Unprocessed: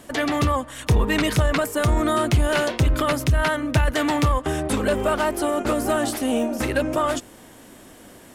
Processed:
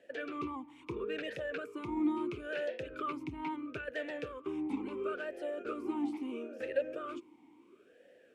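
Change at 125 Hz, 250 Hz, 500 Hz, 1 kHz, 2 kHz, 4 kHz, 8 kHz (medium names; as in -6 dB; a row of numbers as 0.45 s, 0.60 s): -31.0 dB, -13.5 dB, -14.5 dB, -18.0 dB, -17.0 dB, -22.0 dB, under -30 dB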